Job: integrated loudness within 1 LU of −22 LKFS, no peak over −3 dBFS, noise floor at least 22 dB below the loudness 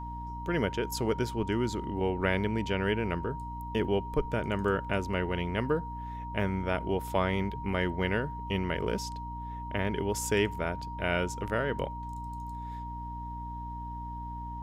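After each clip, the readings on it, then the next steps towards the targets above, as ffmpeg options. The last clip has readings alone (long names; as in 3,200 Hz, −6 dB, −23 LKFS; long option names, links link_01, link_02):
mains hum 60 Hz; hum harmonics up to 300 Hz; level of the hum −38 dBFS; interfering tone 940 Hz; level of the tone −39 dBFS; integrated loudness −32.0 LKFS; sample peak −13.5 dBFS; target loudness −22.0 LKFS
→ -af "bandreject=frequency=60:width_type=h:width=6,bandreject=frequency=120:width_type=h:width=6,bandreject=frequency=180:width_type=h:width=6,bandreject=frequency=240:width_type=h:width=6,bandreject=frequency=300:width_type=h:width=6"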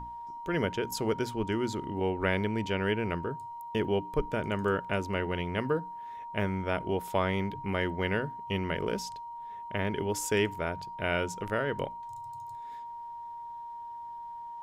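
mains hum none found; interfering tone 940 Hz; level of the tone −39 dBFS
→ -af "bandreject=frequency=940:width=30"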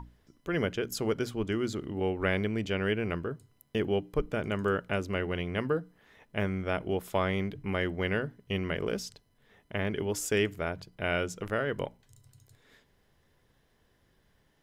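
interfering tone none found; integrated loudness −32.0 LKFS; sample peak −14.0 dBFS; target loudness −22.0 LKFS
→ -af "volume=10dB"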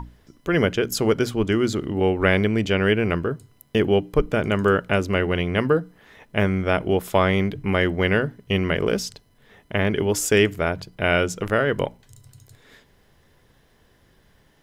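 integrated loudness −22.0 LKFS; sample peak −4.0 dBFS; background noise floor −59 dBFS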